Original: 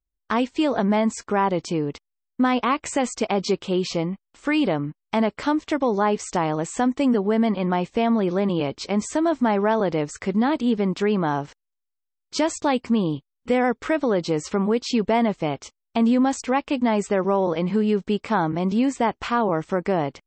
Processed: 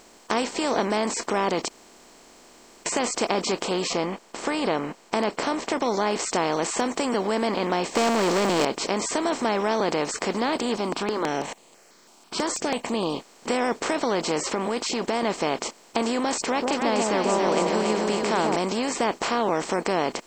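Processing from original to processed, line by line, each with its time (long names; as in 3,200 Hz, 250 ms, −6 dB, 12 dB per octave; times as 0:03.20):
0:01.68–0:02.86: fill with room tone
0:03.93–0:05.82: high-shelf EQ 3,800 Hz −11 dB
0:07.95–0:08.65: leveller curve on the samples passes 3
0:10.76–0:13.03: step-sequenced phaser 6.1 Hz 490–5,500 Hz
0:14.47–0:15.23: downward compressor 2 to 1, threshold −25 dBFS
0:16.42–0:18.56: delay that swaps between a low-pass and a high-pass 140 ms, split 810 Hz, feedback 67%, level −3 dB
whole clip: compressor on every frequency bin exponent 0.4; bass and treble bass −10 dB, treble +8 dB; level −7.5 dB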